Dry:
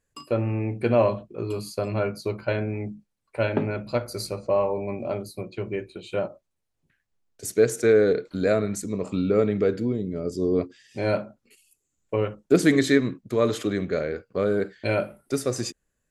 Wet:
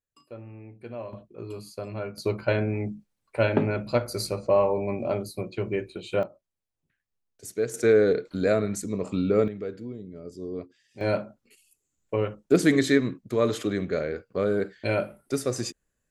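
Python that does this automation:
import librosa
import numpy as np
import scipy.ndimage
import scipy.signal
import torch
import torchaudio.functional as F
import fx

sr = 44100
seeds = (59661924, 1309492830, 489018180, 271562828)

y = fx.gain(x, sr, db=fx.steps((0.0, -17.5), (1.13, -8.0), (2.18, 1.5), (6.23, -8.0), (7.74, -1.0), (9.48, -11.5), (11.01, -1.5)))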